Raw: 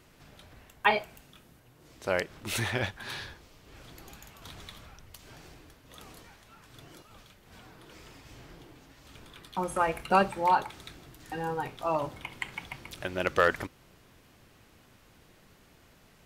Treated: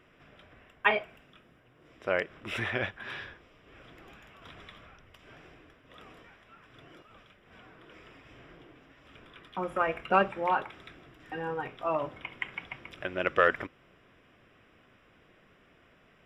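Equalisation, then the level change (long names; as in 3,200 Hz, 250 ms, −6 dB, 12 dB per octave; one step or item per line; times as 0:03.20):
Savitzky-Golay smoothing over 25 samples
low-shelf EQ 200 Hz −9.5 dB
parametric band 870 Hz −9 dB 0.24 octaves
+1.5 dB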